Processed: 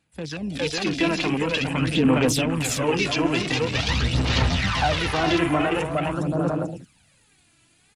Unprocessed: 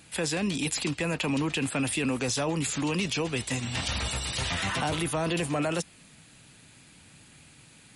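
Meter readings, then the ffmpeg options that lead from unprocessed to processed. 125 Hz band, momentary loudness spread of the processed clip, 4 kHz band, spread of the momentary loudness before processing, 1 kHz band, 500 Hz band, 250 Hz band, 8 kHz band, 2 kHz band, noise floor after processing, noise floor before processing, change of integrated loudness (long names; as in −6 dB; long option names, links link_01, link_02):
+7.5 dB, 7 LU, +5.5 dB, 2 LU, +8.0 dB, +7.5 dB, +7.0 dB, 0.0 dB, +6.5 dB, −61 dBFS, −55 dBFS, +6.0 dB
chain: -af "aecho=1:1:410|676.5|849.7|962.3|1036:0.631|0.398|0.251|0.158|0.1,aphaser=in_gain=1:out_gain=1:delay=3:decay=0.58:speed=0.46:type=sinusoidal,afwtdn=0.0224,dynaudnorm=framelen=140:gausssize=7:maxgain=13.5dB,bandreject=frequency=370:width=12,volume=-6.5dB"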